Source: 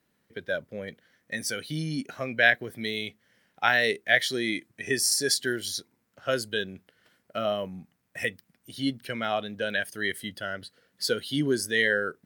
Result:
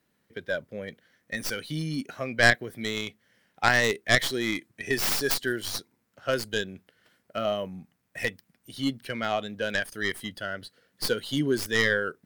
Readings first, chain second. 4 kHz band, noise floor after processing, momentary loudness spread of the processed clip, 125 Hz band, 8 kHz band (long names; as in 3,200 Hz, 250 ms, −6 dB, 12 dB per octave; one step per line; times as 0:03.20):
−0.5 dB, −73 dBFS, 16 LU, +2.5 dB, −3.5 dB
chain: stylus tracing distortion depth 0.16 ms